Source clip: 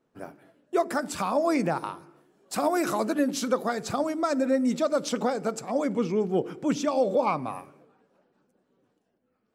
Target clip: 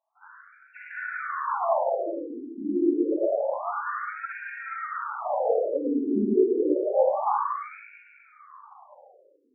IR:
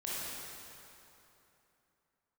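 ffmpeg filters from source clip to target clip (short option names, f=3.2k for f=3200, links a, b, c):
-filter_complex "[0:a]highpass=140,lowpass=3.2k[a];[1:a]atrim=start_sample=2205[b];[a][b]afir=irnorm=-1:irlink=0,afftfilt=real='re*between(b*sr/1024,300*pow(2000/300,0.5+0.5*sin(2*PI*0.28*pts/sr))/1.41,300*pow(2000/300,0.5+0.5*sin(2*PI*0.28*pts/sr))*1.41)':imag='im*between(b*sr/1024,300*pow(2000/300,0.5+0.5*sin(2*PI*0.28*pts/sr))/1.41,300*pow(2000/300,0.5+0.5*sin(2*PI*0.28*pts/sr))*1.41)':win_size=1024:overlap=0.75,volume=2.5dB"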